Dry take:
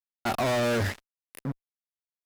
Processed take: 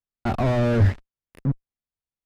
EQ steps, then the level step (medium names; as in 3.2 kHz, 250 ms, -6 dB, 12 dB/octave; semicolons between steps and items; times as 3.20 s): RIAA curve playback; 0.0 dB